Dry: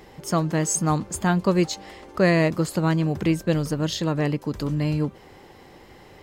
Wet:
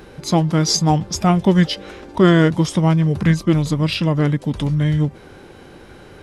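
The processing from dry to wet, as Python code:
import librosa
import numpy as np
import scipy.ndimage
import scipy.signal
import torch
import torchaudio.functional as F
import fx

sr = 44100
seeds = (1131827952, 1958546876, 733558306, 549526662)

y = fx.formant_shift(x, sr, semitones=-5)
y = y * 10.0 ** (6.5 / 20.0)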